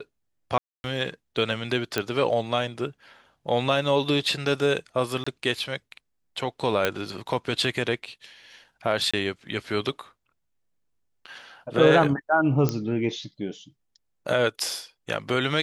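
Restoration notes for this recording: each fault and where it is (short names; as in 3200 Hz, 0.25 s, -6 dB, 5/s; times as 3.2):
0.58–0.84 gap 0.261 s
1.98 pop -9 dBFS
5.24–5.26 gap 25 ms
6.85 pop -8 dBFS
9.11–9.13 gap 25 ms
12.69 pop -10 dBFS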